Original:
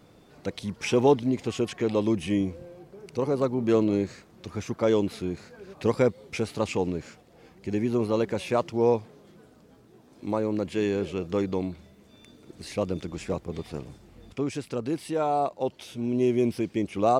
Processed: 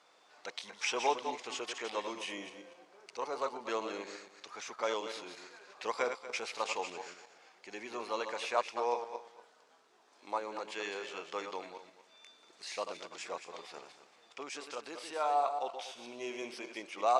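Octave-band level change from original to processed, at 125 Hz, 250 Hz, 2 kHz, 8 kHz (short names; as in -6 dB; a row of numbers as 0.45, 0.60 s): under -30 dB, -22.0 dB, -1.5 dB, -2.0 dB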